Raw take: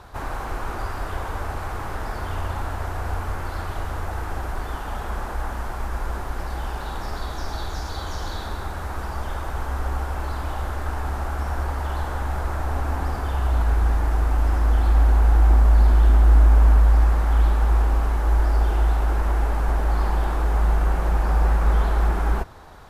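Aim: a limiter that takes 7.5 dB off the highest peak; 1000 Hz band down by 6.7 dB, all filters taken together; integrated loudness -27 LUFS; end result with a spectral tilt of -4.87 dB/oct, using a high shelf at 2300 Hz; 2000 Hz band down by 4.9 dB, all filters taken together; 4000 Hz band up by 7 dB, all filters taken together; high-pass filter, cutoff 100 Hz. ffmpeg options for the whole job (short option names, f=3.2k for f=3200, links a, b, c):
-af "highpass=100,equalizer=f=1k:t=o:g=-8.5,equalizer=f=2k:t=o:g=-6,highshelf=f=2.3k:g=3.5,equalizer=f=4k:t=o:g=7.5,volume=6.5dB,alimiter=limit=-16dB:level=0:latency=1"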